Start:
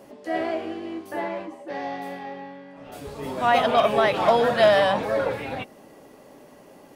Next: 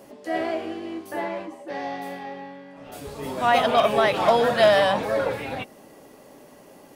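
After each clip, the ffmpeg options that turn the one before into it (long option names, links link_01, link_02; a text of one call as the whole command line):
ffmpeg -i in.wav -af "highshelf=frequency=5000:gain=5" out.wav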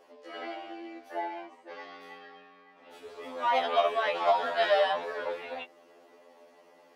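ffmpeg -i in.wav -filter_complex "[0:a]acrossover=split=330 5300:gain=0.0631 1 0.158[link_01][link_02][link_03];[link_01][link_02][link_03]amix=inputs=3:normalize=0,afftfilt=real='re*2*eq(mod(b,4),0)':imag='im*2*eq(mod(b,4),0)':win_size=2048:overlap=0.75,volume=-4dB" out.wav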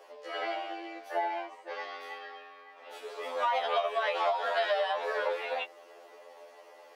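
ffmpeg -i in.wav -af "highpass=frequency=410:width=0.5412,highpass=frequency=410:width=1.3066,acompressor=threshold=-31dB:ratio=12,volume=5.5dB" out.wav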